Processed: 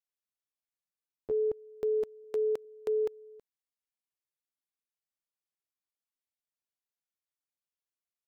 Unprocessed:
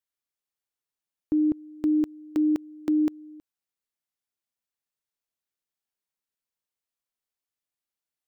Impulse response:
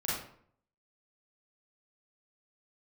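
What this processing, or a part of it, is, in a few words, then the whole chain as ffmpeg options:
chipmunk voice: -filter_complex "[0:a]asetrate=62367,aresample=44100,atempo=0.707107,asettb=1/sr,asplit=3[link_01][link_02][link_03];[link_01]atrim=end=2.244[link_04];[link_02]atrim=start=2.24:end=2.65,asetpts=PTS-STARTPTS,afade=type=in:duration=0.004:curve=qsin,afade=type=out:start_time=0.406:duration=0.004:curve=qsin,highpass=120[link_05];[link_03]atrim=start=2.646[link_06];[link_04][link_05]acrossfade=duration=0.004:curve1=hsin:curve2=qsin[link_07];[link_07][link_06]acrossfade=duration=0.004:curve1=qsin:curve2=hsin,volume=-6.5dB"

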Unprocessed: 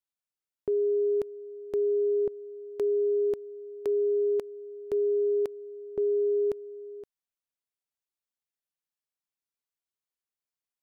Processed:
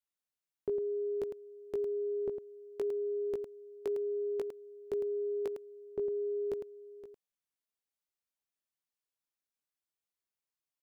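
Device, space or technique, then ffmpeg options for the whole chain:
slapback doubling: -filter_complex "[0:a]asplit=3[link_01][link_02][link_03];[link_02]adelay=18,volume=-5dB[link_04];[link_03]adelay=106,volume=-7.5dB[link_05];[link_01][link_04][link_05]amix=inputs=3:normalize=0,volume=-4dB"

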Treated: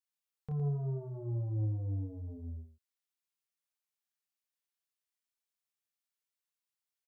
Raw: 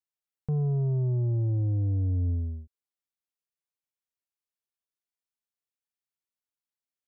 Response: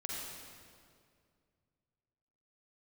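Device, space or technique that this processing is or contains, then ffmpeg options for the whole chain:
slapback doubling: -filter_complex "[0:a]tiltshelf=frequency=680:gain=-5.5,asplit=3[link_01][link_02][link_03];[link_02]adelay=28,volume=-3dB[link_04];[link_03]adelay=111,volume=-7dB[link_05];[link_01][link_04][link_05]amix=inputs=3:normalize=0,volume=-6.5dB"

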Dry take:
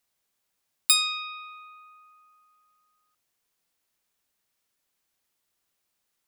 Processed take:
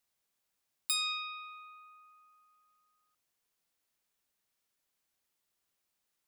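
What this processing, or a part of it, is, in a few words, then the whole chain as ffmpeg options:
soft clipper into limiter: -af "asoftclip=type=tanh:threshold=-6.5dB,alimiter=limit=-15.5dB:level=0:latency=1:release=192,volume=-4.5dB"

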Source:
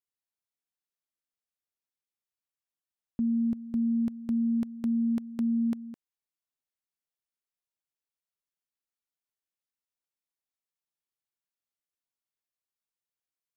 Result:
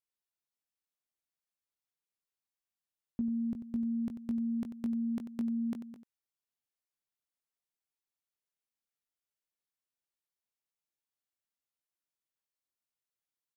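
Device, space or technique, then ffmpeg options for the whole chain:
slapback doubling: -filter_complex "[0:a]asplit=3[link_01][link_02][link_03];[link_02]adelay=20,volume=-8dB[link_04];[link_03]adelay=92,volume=-11dB[link_05];[link_01][link_04][link_05]amix=inputs=3:normalize=0,volume=-3.5dB"

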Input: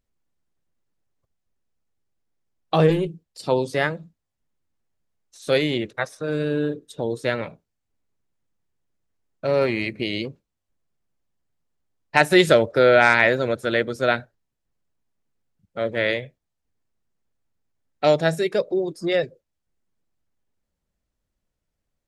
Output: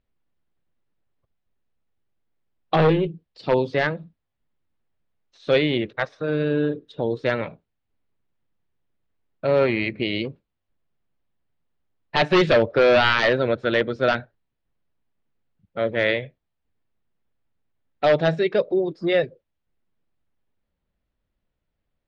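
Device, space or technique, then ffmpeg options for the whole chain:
synthesiser wavefolder: -af "aeval=exprs='0.266*(abs(mod(val(0)/0.266+3,4)-2)-1)':channel_layout=same,lowpass=frequency=3900:width=0.5412,lowpass=frequency=3900:width=1.3066,volume=1.5dB"

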